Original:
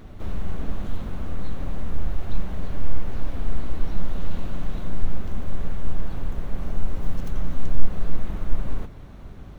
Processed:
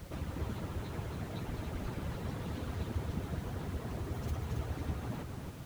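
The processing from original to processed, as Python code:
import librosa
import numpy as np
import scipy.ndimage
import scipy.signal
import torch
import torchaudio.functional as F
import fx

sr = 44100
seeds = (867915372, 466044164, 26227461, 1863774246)

y = fx.hpss_only(x, sr, part='percussive')
y = fx.echo_feedback(y, sr, ms=466, feedback_pct=40, wet_db=-6)
y = fx.stretch_vocoder_free(y, sr, factor=0.59)
y = fx.dmg_noise_colour(y, sr, seeds[0], colour='pink', level_db=-59.0)
y = y * 10.0 ** (3.0 / 20.0)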